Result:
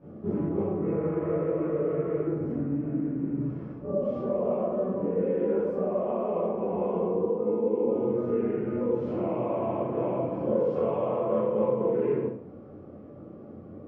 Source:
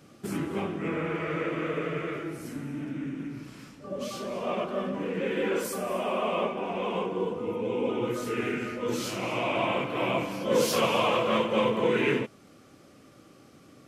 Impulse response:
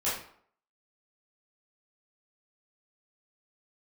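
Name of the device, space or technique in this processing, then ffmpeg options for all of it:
television next door: -filter_complex "[0:a]asettb=1/sr,asplit=3[link_01][link_02][link_03];[link_01]atrim=end=7.244[link_04];[link_02]atrim=start=7.24:end=7.84,asetpts=PTS-STARTPTS,afade=type=in:duration=0.004:curve=qsin,afade=type=out:start_time=0.596:duration=0.004:curve=qsin,highpass=220[link_05];[link_03]atrim=start=7.836[link_06];[link_04][link_05]acrossfade=duration=0.004:curve1=hsin:curve2=qsin[link_07];[link_07][link_06]acrossfade=duration=0.004:curve1=qsin:curve2=hsin,acompressor=threshold=-35dB:ratio=4,lowpass=570[link_08];[1:a]atrim=start_sample=2205[link_09];[link_08][link_09]afir=irnorm=-1:irlink=0,volume=4dB"

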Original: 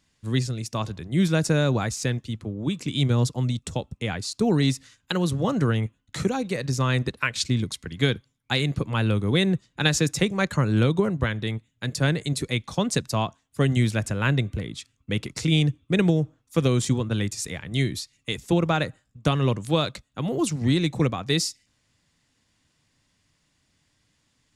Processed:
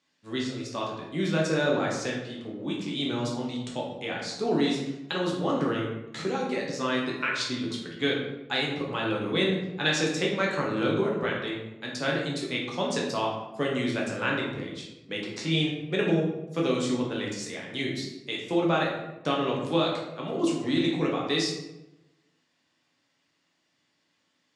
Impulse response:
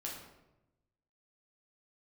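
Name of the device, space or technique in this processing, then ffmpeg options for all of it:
supermarket ceiling speaker: -filter_complex "[0:a]highpass=280,lowpass=5600[link_01];[1:a]atrim=start_sample=2205[link_02];[link_01][link_02]afir=irnorm=-1:irlink=0"

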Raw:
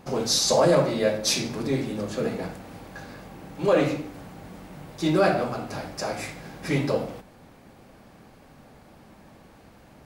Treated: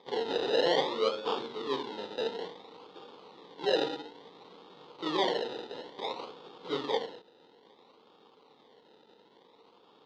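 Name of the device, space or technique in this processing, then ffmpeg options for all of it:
circuit-bent sampling toy: -af "acrusher=samples=31:mix=1:aa=0.000001:lfo=1:lforange=18.6:lforate=0.58,highpass=440,equalizer=frequency=450:width_type=q:width=4:gain=9,equalizer=frequency=630:width_type=q:width=4:gain=-10,equalizer=frequency=950:width_type=q:width=4:gain=4,equalizer=frequency=1600:width_type=q:width=4:gain=-9,equalizer=frequency=2400:width_type=q:width=4:gain=-8,equalizer=frequency=3700:width_type=q:width=4:gain=9,lowpass=frequency=4300:width=0.5412,lowpass=frequency=4300:width=1.3066,volume=-5dB"

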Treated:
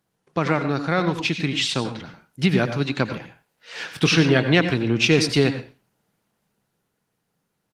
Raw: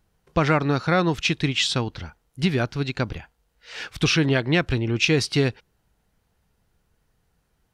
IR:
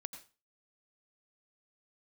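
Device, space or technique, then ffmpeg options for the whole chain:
far-field microphone of a smart speaker: -filter_complex "[0:a]asplit=3[link_01][link_02][link_03];[link_01]afade=type=out:start_time=3.8:duration=0.02[link_04];[link_02]asplit=2[link_05][link_06];[link_06]adelay=24,volume=-13.5dB[link_07];[link_05][link_07]amix=inputs=2:normalize=0,afade=type=in:start_time=3.8:duration=0.02,afade=type=out:start_time=4.49:duration=0.02[link_08];[link_03]afade=type=in:start_time=4.49:duration=0.02[link_09];[link_04][link_08][link_09]amix=inputs=3:normalize=0[link_10];[1:a]atrim=start_sample=2205[link_11];[link_10][link_11]afir=irnorm=-1:irlink=0,highpass=frequency=130:width=0.5412,highpass=frequency=130:width=1.3066,dynaudnorm=framelen=270:gausssize=13:maxgain=6.5dB,volume=2dB" -ar 48000 -c:a libopus -b:a 20k

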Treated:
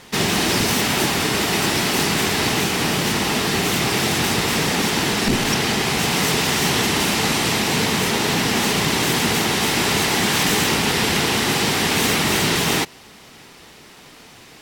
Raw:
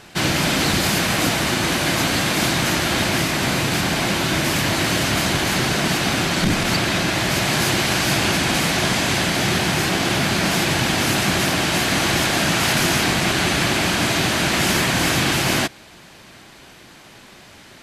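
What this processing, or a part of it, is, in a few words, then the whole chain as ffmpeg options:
nightcore: -af "asetrate=53802,aresample=44100"

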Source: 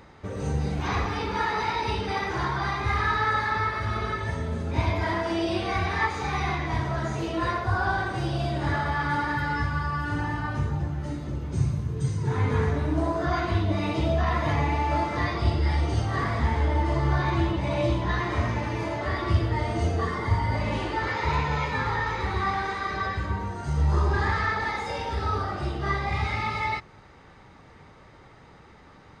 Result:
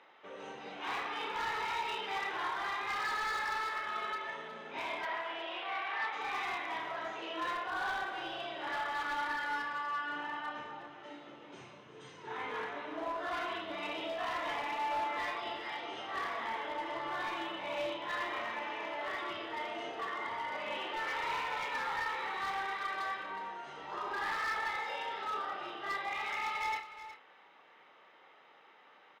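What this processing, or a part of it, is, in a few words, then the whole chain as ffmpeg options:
megaphone: -filter_complex "[0:a]highpass=150,highpass=560,lowpass=3500,equalizer=frequency=3000:width_type=o:width=0.52:gain=8,bandreject=frequency=4600:width=9.2,asoftclip=type=hard:threshold=-25.5dB,asplit=2[link_01][link_02];[link_02]adelay=31,volume=-8dB[link_03];[link_01][link_03]amix=inputs=2:normalize=0,asettb=1/sr,asplit=3[link_04][link_05][link_06];[link_04]atrim=end=5.054[link_07];[link_05]atrim=start=5.05:end=6.13,asetpts=PTS-STARTPTS,afade=type=in:duration=0.004:curve=qsin,afade=type=out:start_time=1.076:duration=0.004:curve=qsin,acrossover=split=450 3800:gain=0.224 1 0.0708[link_08][link_09][link_10];[link_08][link_09][link_10]amix=inputs=3:normalize=0[link_11];[link_06]atrim=start=6.126[link_12];[link_07][link_11]acrossfade=duration=0.004:curve1=hsin:curve2=qsin[link_13];[link_13][link_12]acrossfade=duration=0.004:curve1=qsin:curve2=hsin,aecho=1:1:365:0.224,volume=-7dB"

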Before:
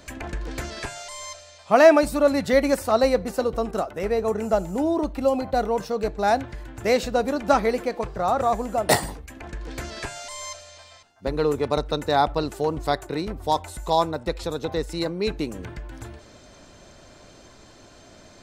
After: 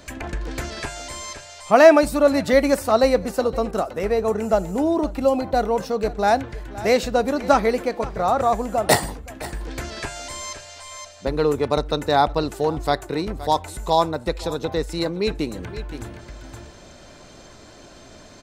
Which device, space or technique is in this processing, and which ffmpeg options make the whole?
ducked delay: -filter_complex "[0:a]asplit=3[link_01][link_02][link_03];[link_02]adelay=519,volume=-4dB[link_04];[link_03]apad=whole_len=835478[link_05];[link_04][link_05]sidechaincompress=threshold=-36dB:ratio=8:attack=8:release=740[link_06];[link_01][link_06]amix=inputs=2:normalize=0,volume=2.5dB"

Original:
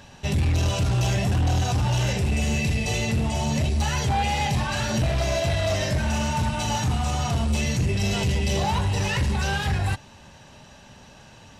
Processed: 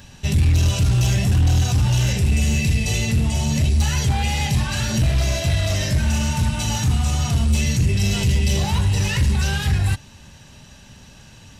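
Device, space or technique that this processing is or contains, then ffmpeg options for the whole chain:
smiley-face EQ: -af "lowshelf=frequency=120:gain=5,equalizer=frequency=720:width_type=o:width=1.9:gain=-7.5,highshelf=frequency=9100:gain=8,volume=3dB"

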